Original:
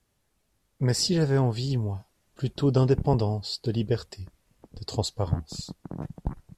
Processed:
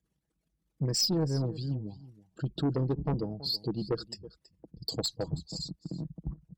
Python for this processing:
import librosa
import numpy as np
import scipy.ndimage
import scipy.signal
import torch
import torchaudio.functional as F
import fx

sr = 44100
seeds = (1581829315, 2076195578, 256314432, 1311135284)

y = fx.envelope_sharpen(x, sr, power=2.0)
y = scipy.signal.sosfilt(scipy.signal.butter(4, 54.0, 'highpass', fs=sr, output='sos'), y)
y = fx.peak_eq(y, sr, hz=640.0, db=-7.0, octaves=2.4)
y = y + 0.46 * np.pad(y, (int(6.2 * sr / 1000.0), 0))[:len(y)]
y = fx.cheby_harmonics(y, sr, harmonics=(4, 5), levels_db=(-28, -32), full_scale_db=-12.5)
y = fx.peak_eq(y, sr, hz=99.0, db=-14.5, octaves=0.77)
y = y + 10.0 ** (-18.5 / 20.0) * np.pad(y, (int(326 * sr / 1000.0), 0))[:len(y)]
y = fx.transient(y, sr, attack_db=4, sustain_db=0)
y = 10.0 ** (-22.5 / 20.0) * np.tanh(y / 10.0 ** (-22.5 / 20.0))